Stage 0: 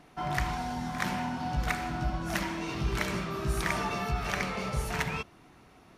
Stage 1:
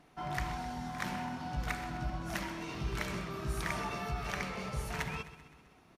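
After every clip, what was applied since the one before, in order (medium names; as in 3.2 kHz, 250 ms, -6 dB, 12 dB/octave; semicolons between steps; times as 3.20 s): feedback delay 129 ms, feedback 57%, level -14.5 dB; trim -6 dB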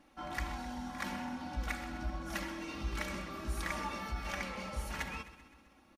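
comb 3.6 ms, depth 84%; trim -3.5 dB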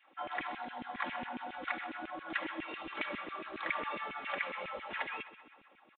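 LFO high-pass saw down 7.3 Hz 270–2700 Hz; resampled via 8 kHz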